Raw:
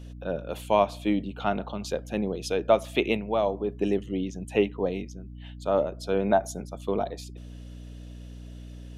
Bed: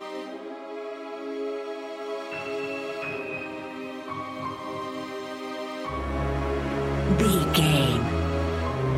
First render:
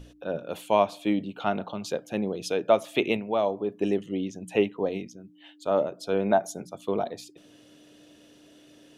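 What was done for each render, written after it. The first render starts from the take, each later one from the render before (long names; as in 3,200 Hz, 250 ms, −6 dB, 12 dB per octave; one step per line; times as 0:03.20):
mains-hum notches 60/120/180/240 Hz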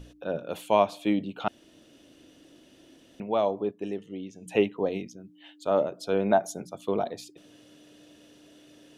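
0:01.48–0:03.20: fill with room tone
0:03.71–0:04.46: tuned comb filter 450 Hz, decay 0.65 s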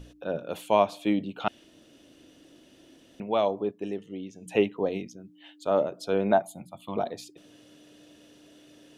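0:01.42–0:03.48: dynamic equaliser 2,800 Hz, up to +5 dB, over −48 dBFS, Q 0.88
0:06.42–0:06.97: phaser with its sweep stopped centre 1,600 Hz, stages 6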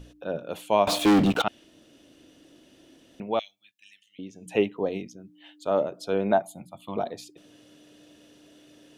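0:00.87–0:01.42: leveller curve on the samples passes 5
0:03.39–0:04.19: inverse Chebyshev high-pass filter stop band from 1,100 Hz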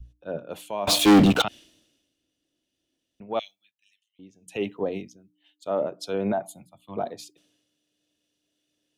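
brickwall limiter −19 dBFS, peak gain reduction 11 dB
multiband upward and downward expander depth 100%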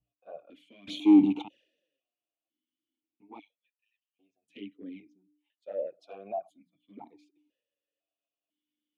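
flanger swept by the level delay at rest 9.1 ms, full sweep at −20.5 dBFS
formant filter that steps through the vowels 2 Hz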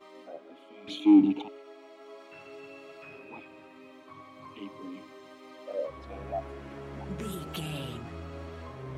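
mix in bed −15.5 dB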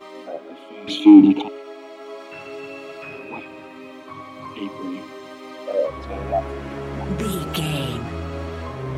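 level +12 dB
brickwall limiter −1 dBFS, peak gain reduction 2.5 dB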